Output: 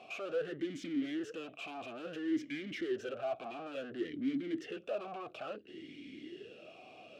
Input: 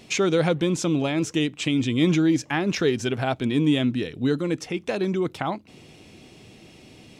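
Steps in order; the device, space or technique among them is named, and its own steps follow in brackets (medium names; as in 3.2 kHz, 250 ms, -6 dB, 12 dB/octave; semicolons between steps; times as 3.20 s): talk box (valve stage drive 38 dB, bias 0.4; talking filter a-i 0.58 Hz); trim +10.5 dB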